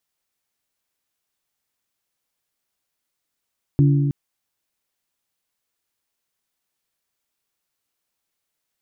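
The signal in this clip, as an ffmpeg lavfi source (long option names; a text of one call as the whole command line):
ffmpeg -f lavfi -i "aevalsrc='0.282*pow(10,-3*t/2.35)*sin(2*PI*142*t)+0.126*pow(10,-3*t/1.909)*sin(2*PI*284*t)+0.0562*pow(10,-3*t/1.807)*sin(2*PI*340.8*t)':duration=0.32:sample_rate=44100" out.wav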